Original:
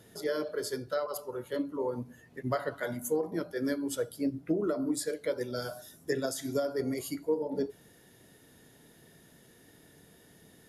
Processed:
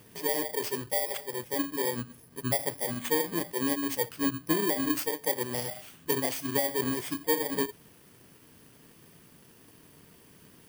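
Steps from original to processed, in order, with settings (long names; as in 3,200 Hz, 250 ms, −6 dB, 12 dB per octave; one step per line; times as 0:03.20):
samples in bit-reversed order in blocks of 32 samples
level +2.5 dB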